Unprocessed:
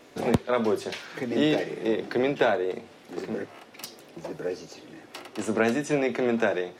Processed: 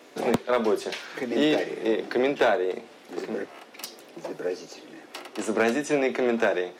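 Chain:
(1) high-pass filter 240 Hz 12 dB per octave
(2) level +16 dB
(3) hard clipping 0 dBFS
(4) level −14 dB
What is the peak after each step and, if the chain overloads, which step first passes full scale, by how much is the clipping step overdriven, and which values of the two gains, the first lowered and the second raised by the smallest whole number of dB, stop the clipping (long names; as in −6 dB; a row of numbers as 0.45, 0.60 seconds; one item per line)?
−10.5, +5.5, 0.0, −14.0 dBFS
step 2, 5.5 dB
step 2 +10 dB, step 4 −8 dB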